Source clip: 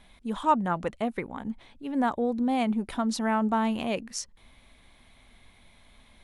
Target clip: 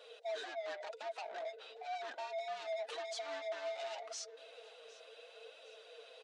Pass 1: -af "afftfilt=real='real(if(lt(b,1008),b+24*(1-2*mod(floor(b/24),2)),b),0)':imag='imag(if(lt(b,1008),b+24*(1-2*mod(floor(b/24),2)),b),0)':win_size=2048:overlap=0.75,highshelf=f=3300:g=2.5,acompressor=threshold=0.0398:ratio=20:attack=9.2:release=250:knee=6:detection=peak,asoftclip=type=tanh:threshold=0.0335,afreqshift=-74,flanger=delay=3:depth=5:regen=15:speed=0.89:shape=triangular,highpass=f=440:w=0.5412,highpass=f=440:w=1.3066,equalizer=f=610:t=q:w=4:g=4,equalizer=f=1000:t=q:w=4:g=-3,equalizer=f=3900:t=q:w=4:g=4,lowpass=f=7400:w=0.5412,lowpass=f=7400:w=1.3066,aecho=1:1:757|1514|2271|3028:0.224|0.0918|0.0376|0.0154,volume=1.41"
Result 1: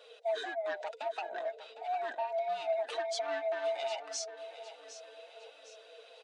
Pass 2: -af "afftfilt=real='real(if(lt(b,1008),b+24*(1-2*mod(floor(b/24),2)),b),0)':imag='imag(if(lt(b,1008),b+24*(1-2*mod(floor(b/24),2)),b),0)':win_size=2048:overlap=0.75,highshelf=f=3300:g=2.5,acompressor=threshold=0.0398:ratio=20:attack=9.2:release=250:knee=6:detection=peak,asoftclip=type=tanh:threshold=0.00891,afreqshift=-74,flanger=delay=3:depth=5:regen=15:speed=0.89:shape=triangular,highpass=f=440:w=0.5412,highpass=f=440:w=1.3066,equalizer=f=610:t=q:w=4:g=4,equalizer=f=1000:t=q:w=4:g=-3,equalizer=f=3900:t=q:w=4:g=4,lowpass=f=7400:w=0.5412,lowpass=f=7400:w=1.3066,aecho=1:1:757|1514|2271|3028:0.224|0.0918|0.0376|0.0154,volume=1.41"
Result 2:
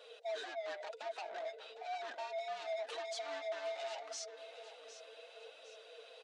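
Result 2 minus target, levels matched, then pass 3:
echo-to-direct +7.5 dB
-af "afftfilt=real='real(if(lt(b,1008),b+24*(1-2*mod(floor(b/24),2)),b),0)':imag='imag(if(lt(b,1008),b+24*(1-2*mod(floor(b/24),2)),b),0)':win_size=2048:overlap=0.75,highshelf=f=3300:g=2.5,acompressor=threshold=0.0398:ratio=20:attack=9.2:release=250:knee=6:detection=peak,asoftclip=type=tanh:threshold=0.00891,afreqshift=-74,flanger=delay=3:depth=5:regen=15:speed=0.89:shape=triangular,highpass=f=440:w=0.5412,highpass=f=440:w=1.3066,equalizer=f=610:t=q:w=4:g=4,equalizer=f=1000:t=q:w=4:g=-3,equalizer=f=3900:t=q:w=4:g=4,lowpass=f=7400:w=0.5412,lowpass=f=7400:w=1.3066,aecho=1:1:757|1514|2271:0.0944|0.0387|0.0159,volume=1.41"

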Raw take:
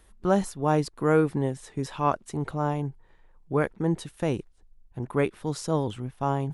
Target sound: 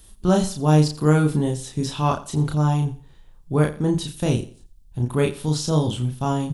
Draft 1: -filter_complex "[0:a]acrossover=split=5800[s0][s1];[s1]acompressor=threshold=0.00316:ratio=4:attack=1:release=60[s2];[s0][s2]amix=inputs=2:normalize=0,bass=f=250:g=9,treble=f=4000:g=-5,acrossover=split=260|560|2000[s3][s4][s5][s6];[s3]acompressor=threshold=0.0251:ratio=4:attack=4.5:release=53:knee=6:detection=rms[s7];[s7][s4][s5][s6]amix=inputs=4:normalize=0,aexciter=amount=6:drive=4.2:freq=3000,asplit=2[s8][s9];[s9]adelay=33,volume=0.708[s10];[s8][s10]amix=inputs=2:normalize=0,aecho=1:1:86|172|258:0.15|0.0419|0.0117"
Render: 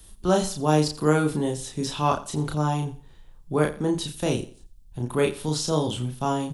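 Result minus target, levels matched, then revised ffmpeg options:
compression: peak gain reduction +12 dB
-filter_complex "[0:a]acrossover=split=5800[s0][s1];[s1]acompressor=threshold=0.00316:ratio=4:attack=1:release=60[s2];[s0][s2]amix=inputs=2:normalize=0,bass=f=250:g=9,treble=f=4000:g=-5,aexciter=amount=6:drive=4.2:freq=3000,asplit=2[s3][s4];[s4]adelay=33,volume=0.708[s5];[s3][s5]amix=inputs=2:normalize=0,aecho=1:1:86|172|258:0.15|0.0419|0.0117"

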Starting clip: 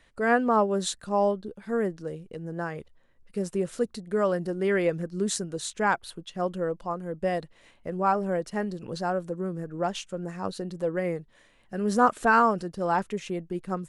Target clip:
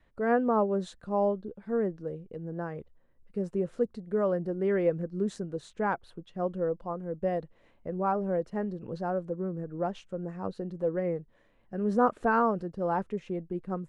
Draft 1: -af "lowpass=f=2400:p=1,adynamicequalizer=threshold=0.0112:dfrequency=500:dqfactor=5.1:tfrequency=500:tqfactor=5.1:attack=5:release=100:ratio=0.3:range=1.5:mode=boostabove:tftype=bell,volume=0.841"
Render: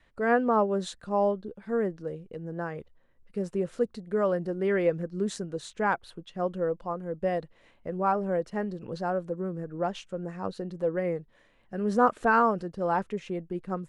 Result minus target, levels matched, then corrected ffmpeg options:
2 kHz band +3.5 dB
-af "lowpass=f=800:p=1,adynamicequalizer=threshold=0.0112:dfrequency=500:dqfactor=5.1:tfrequency=500:tqfactor=5.1:attack=5:release=100:ratio=0.3:range=1.5:mode=boostabove:tftype=bell,volume=0.841"

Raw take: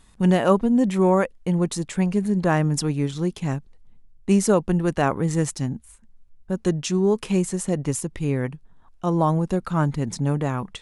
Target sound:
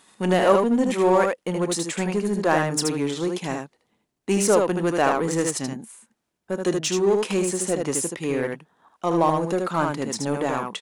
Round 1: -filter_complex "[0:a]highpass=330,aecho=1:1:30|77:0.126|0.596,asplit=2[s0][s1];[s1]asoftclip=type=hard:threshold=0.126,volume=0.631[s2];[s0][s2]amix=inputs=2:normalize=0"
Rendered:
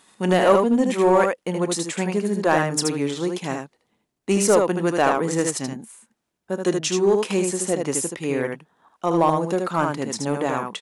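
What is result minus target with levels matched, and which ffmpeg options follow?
hard clipper: distortion -6 dB
-filter_complex "[0:a]highpass=330,aecho=1:1:30|77:0.126|0.596,asplit=2[s0][s1];[s1]asoftclip=type=hard:threshold=0.0501,volume=0.631[s2];[s0][s2]amix=inputs=2:normalize=0"

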